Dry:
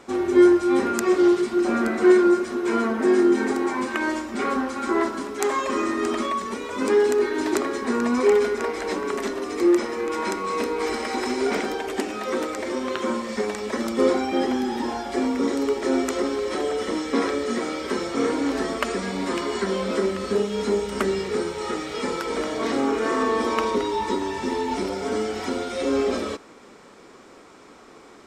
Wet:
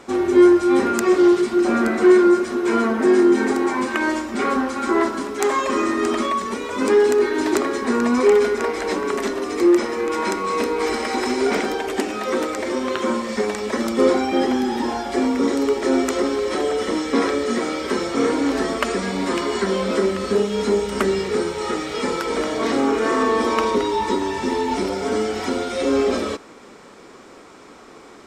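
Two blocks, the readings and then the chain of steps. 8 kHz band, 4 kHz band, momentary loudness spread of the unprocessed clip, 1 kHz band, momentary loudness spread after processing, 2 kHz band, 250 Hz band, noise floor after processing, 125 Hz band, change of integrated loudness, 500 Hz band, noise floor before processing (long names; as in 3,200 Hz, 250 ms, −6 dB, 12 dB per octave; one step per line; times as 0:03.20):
+3.5 dB, +4.0 dB, 8 LU, +4.0 dB, 8 LU, +3.5 dB, +3.5 dB, −44 dBFS, +4.0 dB, +3.5 dB, +3.5 dB, −48 dBFS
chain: soft clipping −7.5 dBFS, distortion −25 dB
level +4 dB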